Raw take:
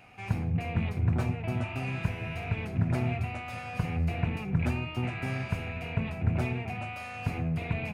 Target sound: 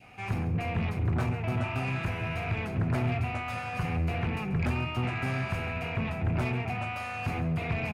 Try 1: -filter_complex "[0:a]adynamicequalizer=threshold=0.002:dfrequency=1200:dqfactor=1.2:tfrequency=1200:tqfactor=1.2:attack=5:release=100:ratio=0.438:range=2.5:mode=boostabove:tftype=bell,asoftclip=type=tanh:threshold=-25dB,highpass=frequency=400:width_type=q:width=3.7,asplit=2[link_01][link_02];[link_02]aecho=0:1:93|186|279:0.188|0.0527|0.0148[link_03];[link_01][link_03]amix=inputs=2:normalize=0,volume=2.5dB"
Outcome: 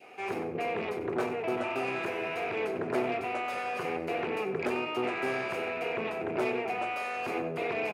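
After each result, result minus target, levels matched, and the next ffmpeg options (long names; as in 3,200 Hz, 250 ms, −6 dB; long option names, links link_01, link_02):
500 Hz band +8.5 dB; echo 44 ms early
-filter_complex "[0:a]adynamicequalizer=threshold=0.002:dfrequency=1200:dqfactor=1.2:tfrequency=1200:tqfactor=1.2:attack=5:release=100:ratio=0.438:range=2.5:mode=boostabove:tftype=bell,asoftclip=type=tanh:threshold=-25dB,asplit=2[link_01][link_02];[link_02]aecho=0:1:93|186|279:0.188|0.0527|0.0148[link_03];[link_01][link_03]amix=inputs=2:normalize=0,volume=2.5dB"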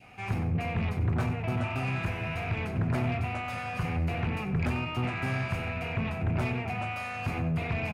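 echo 44 ms early
-filter_complex "[0:a]adynamicequalizer=threshold=0.002:dfrequency=1200:dqfactor=1.2:tfrequency=1200:tqfactor=1.2:attack=5:release=100:ratio=0.438:range=2.5:mode=boostabove:tftype=bell,asoftclip=type=tanh:threshold=-25dB,asplit=2[link_01][link_02];[link_02]aecho=0:1:137|274|411:0.188|0.0527|0.0148[link_03];[link_01][link_03]amix=inputs=2:normalize=0,volume=2.5dB"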